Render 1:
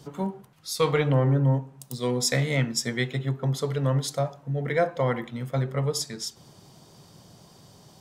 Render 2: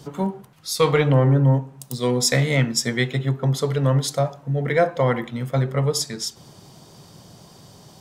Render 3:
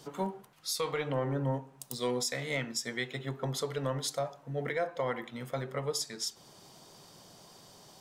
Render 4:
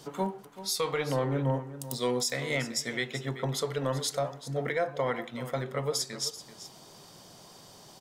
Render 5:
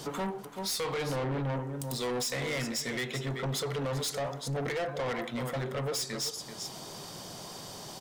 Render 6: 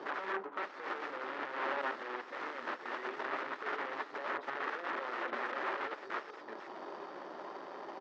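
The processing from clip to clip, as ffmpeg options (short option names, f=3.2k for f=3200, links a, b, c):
-af "acontrast=35"
-af "equalizer=f=96:w=0.48:g=-12,alimiter=limit=-17.5dB:level=0:latency=1:release=408,volume=-5dB"
-af "aecho=1:1:384:0.2,volume=3dB"
-filter_complex "[0:a]asplit=2[a][b];[b]alimiter=level_in=6dB:limit=-24dB:level=0:latency=1:release=448,volume=-6dB,volume=2dB[c];[a][c]amix=inputs=2:normalize=0,asoftclip=type=tanh:threshold=-31dB,volume=1.5dB"
-af "aeval=exprs='(mod(53.1*val(0)+1,2)-1)/53.1':c=same,adynamicsmooth=sensitivity=3:basefreq=510,highpass=f=390:w=0.5412,highpass=f=390:w=1.3066,equalizer=f=470:t=q:w=4:g=-9,equalizer=f=690:t=q:w=4:g=-7,equalizer=f=1.3k:t=q:w=4:g=4,equalizer=f=1.8k:t=q:w=4:g=6,lowpass=f=6.2k:w=0.5412,lowpass=f=6.2k:w=1.3066,volume=11dB"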